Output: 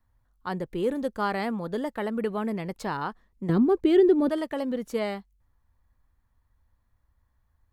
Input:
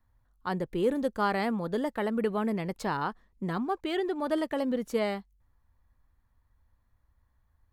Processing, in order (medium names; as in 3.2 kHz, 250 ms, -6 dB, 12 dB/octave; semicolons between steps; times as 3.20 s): 3.49–4.29 s: resonant low shelf 570 Hz +10 dB, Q 1.5